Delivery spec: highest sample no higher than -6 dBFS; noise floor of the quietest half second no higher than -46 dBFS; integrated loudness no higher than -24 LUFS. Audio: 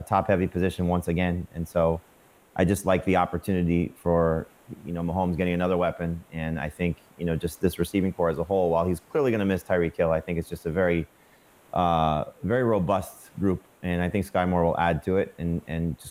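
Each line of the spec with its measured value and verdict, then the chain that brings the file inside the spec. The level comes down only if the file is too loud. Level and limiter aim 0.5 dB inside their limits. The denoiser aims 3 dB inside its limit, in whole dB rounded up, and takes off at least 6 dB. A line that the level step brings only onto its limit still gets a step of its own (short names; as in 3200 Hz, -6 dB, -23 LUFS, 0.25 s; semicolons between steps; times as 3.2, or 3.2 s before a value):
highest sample -8.0 dBFS: OK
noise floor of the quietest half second -57 dBFS: OK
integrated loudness -26.0 LUFS: OK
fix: none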